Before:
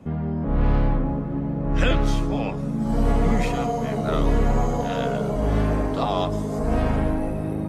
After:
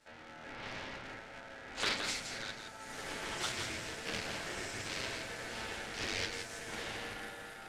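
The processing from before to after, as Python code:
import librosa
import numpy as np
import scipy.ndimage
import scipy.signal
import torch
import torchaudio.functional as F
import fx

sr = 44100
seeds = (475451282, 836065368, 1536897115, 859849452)

p1 = fx.lower_of_two(x, sr, delay_ms=9.2)
p2 = fx.bandpass_q(p1, sr, hz=5900.0, q=0.83)
p3 = p2 * np.sin(2.0 * np.pi * 1100.0 * np.arange(len(p2)) / sr)
p4 = p3 + fx.echo_single(p3, sr, ms=169, db=-6.5, dry=0)
p5 = fx.doppler_dist(p4, sr, depth_ms=0.33)
y = p5 * librosa.db_to_amplitude(4.0)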